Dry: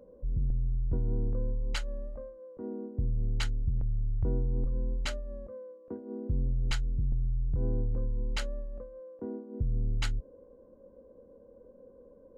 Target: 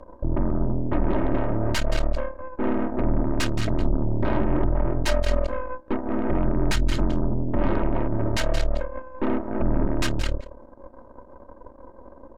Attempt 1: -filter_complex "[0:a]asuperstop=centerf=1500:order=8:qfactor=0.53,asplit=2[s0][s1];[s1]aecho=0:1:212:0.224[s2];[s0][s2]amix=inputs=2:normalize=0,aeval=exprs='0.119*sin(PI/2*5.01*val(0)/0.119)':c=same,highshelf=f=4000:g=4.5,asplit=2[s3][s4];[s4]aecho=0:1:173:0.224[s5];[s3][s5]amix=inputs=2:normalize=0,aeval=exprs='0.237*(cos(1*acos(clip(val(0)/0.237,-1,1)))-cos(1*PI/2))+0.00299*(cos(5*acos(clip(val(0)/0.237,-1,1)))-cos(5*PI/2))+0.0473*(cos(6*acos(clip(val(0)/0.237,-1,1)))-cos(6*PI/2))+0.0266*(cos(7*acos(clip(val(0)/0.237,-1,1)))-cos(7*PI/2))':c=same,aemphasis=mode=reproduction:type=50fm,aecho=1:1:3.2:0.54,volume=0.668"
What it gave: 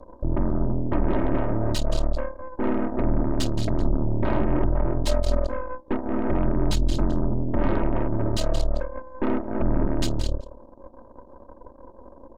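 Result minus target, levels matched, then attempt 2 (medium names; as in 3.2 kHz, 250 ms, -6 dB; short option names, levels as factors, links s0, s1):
2 kHz band -5.0 dB
-filter_complex "[0:a]asplit=2[s0][s1];[s1]aecho=0:1:212:0.224[s2];[s0][s2]amix=inputs=2:normalize=0,aeval=exprs='0.119*sin(PI/2*5.01*val(0)/0.119)':c=same,highshelf=f=4000:g=4.5,asplit=2[s3][s4];[s4]aecho=0:1:173:0.224[s5];[s3][s5]amix=inputs=2:normalize=0,aeval=exprs='0.237*(cos(1*acos(clip(val(0)/0.237,-1,1)))-cos(1*PI/2))+0.00299*(cos(5*acos(clip(val(0)/0.237,-1,1)))-cos(5*PI/2))+0.0473*(cos(6*acos(clip(val(0)/0.237,-1,1)))-cos(6*PI/2))+0.0266*(cos(7*acos(clip(val(0)/0.237,-1,1)))-cos(7*PI/2))':c=same,aemphasis=mode=reproduction:type=50fm,aecho=1:1:3.2:0.54,volume=0.668"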